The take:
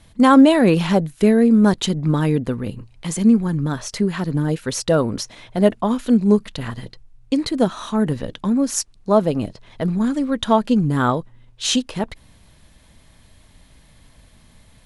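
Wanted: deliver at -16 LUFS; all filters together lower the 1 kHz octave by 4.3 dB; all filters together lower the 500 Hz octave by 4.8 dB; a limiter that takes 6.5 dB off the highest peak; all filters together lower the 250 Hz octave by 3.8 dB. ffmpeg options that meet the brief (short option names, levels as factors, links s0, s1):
-af "equalizer=f=250:t=o:g=-3.5,equalizer=f=500:t=o:g=-4,equalizer=f=1000:t=o:g=-4,volume=2.37,alimiter=limit=0.631:level=0:latency=1"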